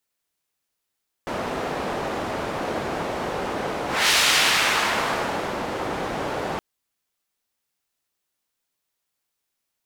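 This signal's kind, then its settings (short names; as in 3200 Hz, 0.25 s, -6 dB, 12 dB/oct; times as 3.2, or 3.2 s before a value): whoosh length 5.32 s, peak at 2.84, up 0.26 s, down 1.58 s, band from 610 Hz, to 3200 Hz, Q 0.77, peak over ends 10 dB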